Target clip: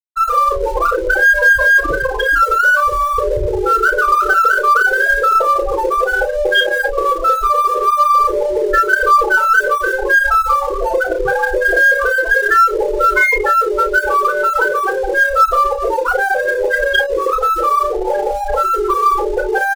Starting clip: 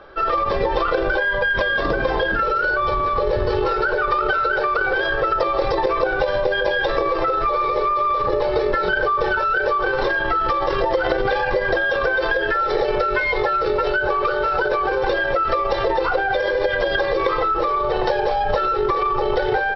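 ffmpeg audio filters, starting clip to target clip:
-filter_complex "[0:a]afftfilt=real='re*gte(hypot(re,im),0.398)':imag='im*gte(hypot(re,im),0.398)':win_size=1024:overlap=0.75,equalizer=f=670:t=o:w=0.77:g=-3,asplit=2[a][b];[b]aeval=exprs='sgn(val(0))*max(abs(val(0))-0.0112,0)':c=same,volume=-9.5dB[c];[a][c]amix=inputs=2:normalize=0,aecho=1:1:34|56:0.531|0.2,aeval=exprs='0.562*(cos(1*acos(clip(val(0)/0.562,-1,1)))-cos(1*PI/2))+0.00562*(cos(8*acos(clip(val(0)/0.562,-1,1)))-cos(8*PI/2))':c=same,areverse,acompressor=mode=upward:threshold=-30dB:ratio=2.5,areverse,crystalizer=i=7:c=0,volume=1dB"

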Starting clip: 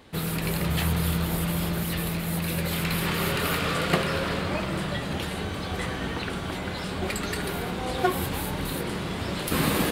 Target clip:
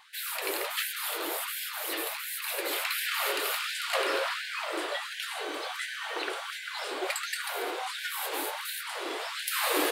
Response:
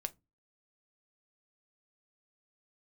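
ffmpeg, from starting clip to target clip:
-filter_complex "[0:a]asettb=1/sr,asplit=3[a][b][c];[a]atrim=end=3.314[d];[b]atrim=start=3.31:end=3.95,asetpts=PTS-STARTPTS,afade=t=in:d=0.004:c=qsin,afade=t=out:st=0.636:d=0.004:c=qsin,acrossover=split=180|3000[e][f][g];[f]acompressor=threshold=-30dB:ratio=6[h];[e][h][g]amix=inputs=3:normalize=0[i];[c]atrim=start=3.946[j];[d][i]acrossfade=d=0.004:c1=hsin:c2=qsin[k];[k][j]acrossfade=d=0.004:c1=qsin:c2=hsin,afftfilt=real='re*gte(b*sr/1024,280*pow(1500/280,0.5+0.5*sin(2*PI*1.4*pts/sr)))':imag='im*gte(b*sr/1024,280*pow(1500/280,0.5+0.5*sin(2*PI*1.4*pts/sr)))':win_size=1024:overlap=0.75"

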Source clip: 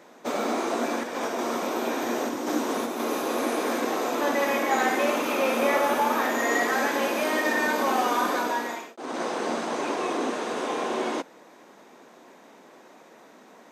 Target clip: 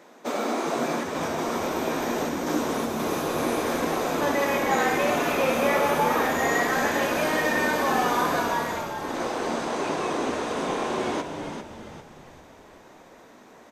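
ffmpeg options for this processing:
-filter_complex "[0:a]asplit=6[a][b][c][d][e][f];[b]adelay=398,afreqshift=-75,volume=-7dB[g];[c]adelay=796,afreqshift=-150,volume=-14.5dB[h];[d]adelay=1194,afreqshift=-225,volume=-22.1dB[i];[e]adelay=1592,afreqshift=-300,volume=-29.6dB[j];[f]adelay=1990,afreqshift=-375,volume=-37.1dB[k];[a][g][h][i][j][k]amix=inputs=6:normalize=0"

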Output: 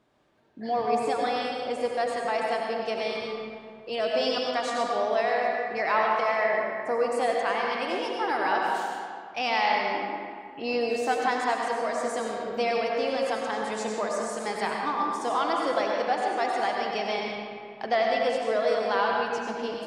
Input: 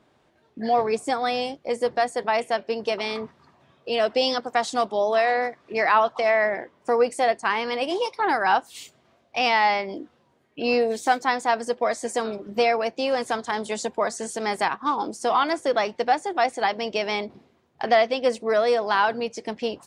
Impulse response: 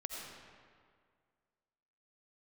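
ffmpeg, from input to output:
-filter_complex "[1:a]atrim=start_sample=2205,asetrate=40131,aresample=44100[a];[0:a][a]afir=irnorm=-1:irlink=0,volume=-3.5dB"

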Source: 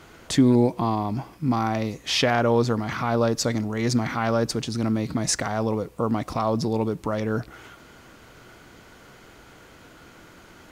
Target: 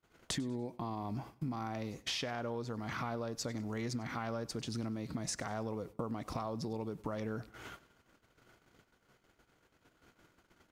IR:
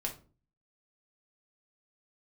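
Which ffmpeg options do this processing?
-filter_complex "[0:a]acompressor=threshold=-33dB:ratio=16,agate=range=-37dB:threshold=-45dB:ratio=16:detection=peak,asplit=2[a][b];[b]aecho=0:1:97|194|291:0.0891|0.0357|0.0143[c];[a][c]amix=inputs=2:normalize=0,volume=-2dB"

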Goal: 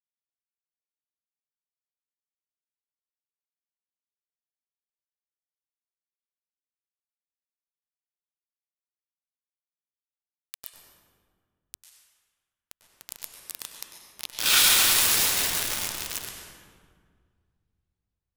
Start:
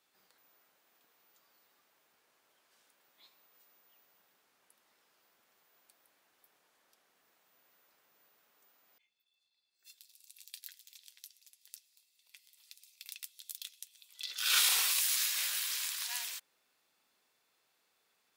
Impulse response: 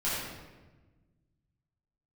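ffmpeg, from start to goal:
-filter_complex "[0:a]acrusher=bits=4:mix=0:aa=0.000001,asplit=2[a][b];[1:a]atrim=start_sample=2205,asetrate=27783,aresample=44100,adelay=96[c];[b][c]afir=irnorm=-1:irlink=0,volume=-14.5dB[d];[a][d]amix=inputs=2:normalize=0,volume=7.5dB"

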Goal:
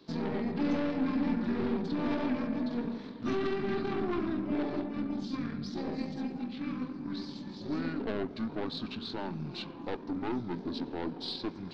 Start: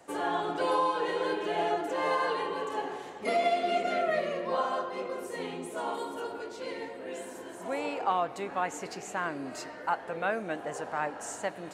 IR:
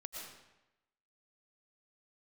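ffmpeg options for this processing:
-af "asetrate=24750,aresample=44100,atempo=1.7818,aeval=exprs='(tanh(28.2*val(0)+0.65)-tanh(0.65))/28.2':c=same,equalizer=f=250:t=o:w=1:g=9,equalizer=f=500:t=o:w=1:g=-5,equalizer=f=4k:t=o:w=1:g=11,equalizer=f=8k:t=o:w=1:g=-9"

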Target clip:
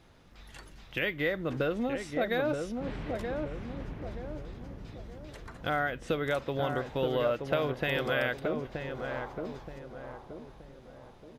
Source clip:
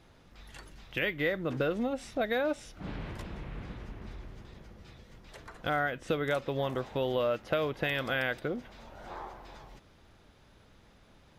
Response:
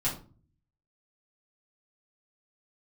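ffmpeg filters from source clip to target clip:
-filter_complex "[0:a]asplit=2[a][b];[b]adelay=926,lowpass=f=970:p=1,volume=-4dB,asplit=2[c][d];[d]adelay=926,lowpass=f=970:p=1,volume=0.47,asplit=2[e][f];[f]adelay=926,lowpass=f=970:p=1,volume=0.47,asplit=2[g][h];[h]adelay=926,lowpass=f=970:p=1,volume=0.47,asplit=2[i][j];[j]adelay=926,lowpass=f=970:p=1,volume=0.47,asplit=2[k][l];[l]adelay=926,lowpass=f=970:p=1,volume=0.47[m];[a][c][e][g][i][k][m]amix=inputs=7:normalize=0"

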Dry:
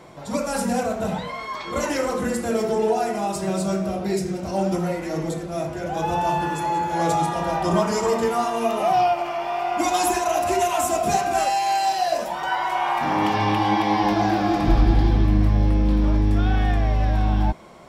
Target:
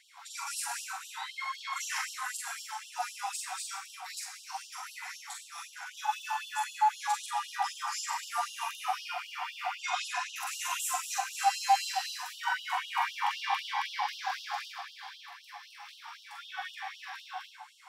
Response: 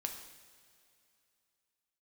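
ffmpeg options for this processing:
-filter_complex "[0:a]asettb=1/sr,asplit=3[a][b][c];[a]atrim=end=9.754[d];[b]atrim=start=9.75:end=10.36,asetpts=PTS-STARTPTS,afade=t=in:d=0.004:c=qsin,afade=t=out:st=0.606:d=0.004:c=qsin,highpass=470,lowpass=4.1k[e];[c]atrim=start=10.356[f];[d][e]acrossfade=d=0.004:c1=hsin:c2=qsin[g];[g][f]acrossfade=d=0.004:c1=qsin:c2=hsin,alimiter=limit=-13.5dB:level=0:latency=1:release=237,asplit=2[h][i];[1:a]atrim=start_sample=2205,adelay=43[j];[i][j]afir=irnorm=-1:irlink=0,volume=-0.5dB[k];[h][k]amix=inputs=2:normalize=0,afftfilt=real='re*gte(b*sr/1024,700*pow(2800/700,0.5+0.5*sin(2*PI*3.9*pts/sr)))':imag='im*gte(b*sr/1024,700*pow(2800/700,0.5+0.5*sin(2*PI*3.9*pts/sr)))':win_size=1024:overlap=0.75,volume=-5dB"

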